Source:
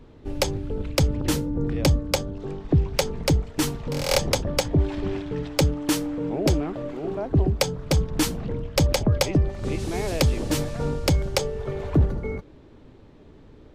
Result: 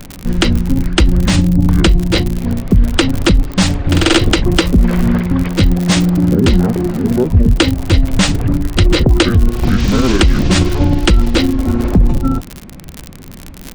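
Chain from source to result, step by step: delay-line pitch shifter -8.5 st; crackle 68/s -32 dBFS; high shelf 9800 Hz +4 dB; maximiser +18 dB; gain -1 dB

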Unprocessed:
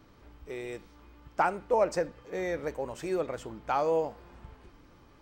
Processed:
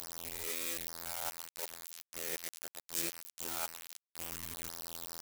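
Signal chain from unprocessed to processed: spectral swells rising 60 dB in 0.61 s; flipped gate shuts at -23 dBFS, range -36 dB; in parallel at +2 dB: negative-ratio compressor -49 dBFS, ratio -1; on the sum: added harmonics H 2 -16 dB, 3 -36 dB, 4 -23 dB, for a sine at -21.5 dBFS; on a send: feedback echo 0.107 s, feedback 42%, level -18 dB; on the sum: robotiser 84 Hz; bit-crush 7-bit; pre-emphasis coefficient 0.9; gain +10.5 dB

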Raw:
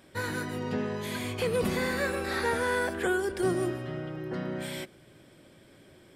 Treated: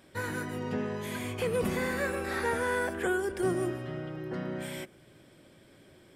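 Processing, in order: dynamic EQ 4200 Hz, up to -7 dB, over -57 dBFS, Q 2.5; gain -1.5 dB

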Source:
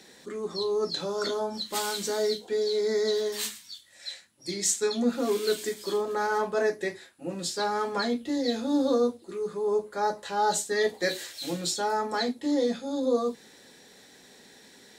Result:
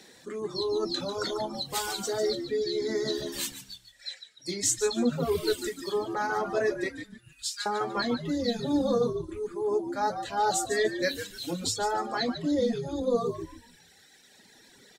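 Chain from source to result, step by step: 6.89–7.66 steep high-pass 1500 Hz 36 dB/oct; frequency-shifting echo 0.146 s, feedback 42%, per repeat -77 Hz, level -7 dB; reverb removal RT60 1.9 s

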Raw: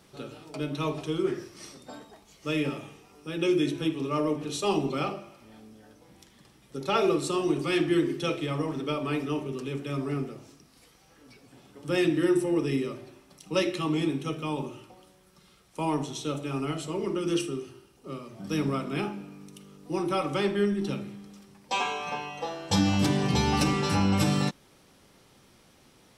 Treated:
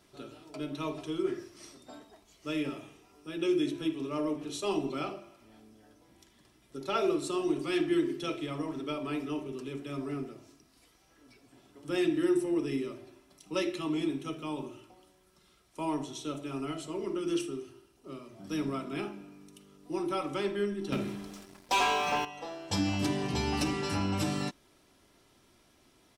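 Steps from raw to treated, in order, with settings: 20.92–22.25 sample leveller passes 3; comb 3 ms, depth 41%; gain -6 dB

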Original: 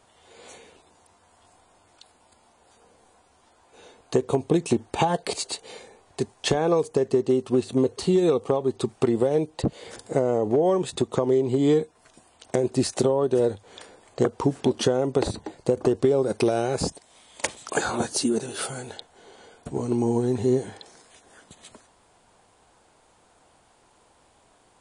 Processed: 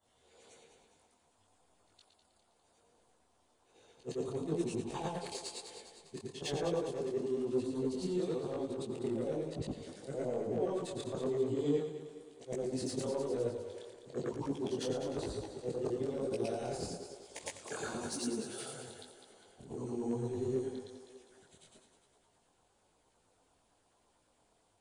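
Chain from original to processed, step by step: short-time reversal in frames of 0.229 s; in parallel at -9 dB: overloaded stage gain 28.5 dB; on the sum: LFO notch saw down 8.9 Hz 690–2900 Hz; split-band echo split 350 Hz, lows 95 ms, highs 0.202 s, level -9 dB; detuned doubles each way 36 cents; gain -8 dB

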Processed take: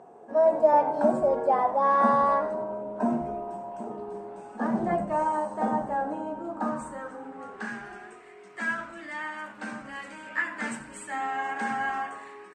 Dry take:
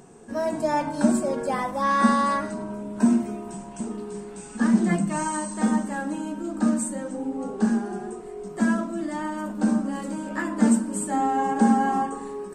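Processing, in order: band-pass sweep 710 Hz -> 2100 Hz, 6.3–7.77; frequency-shifting echo 89 ms, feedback 38%, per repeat -84 Hz, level -16.5 dB; gain +7.5 dB

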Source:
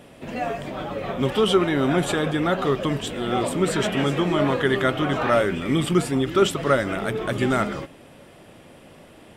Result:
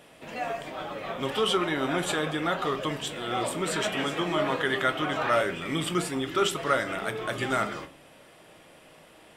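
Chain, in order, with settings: low shelf 400 Hz -12 dB; reverb RT60 0.35 s, pre-delay 6 ms, DRR 9 dB; gain -2 dB

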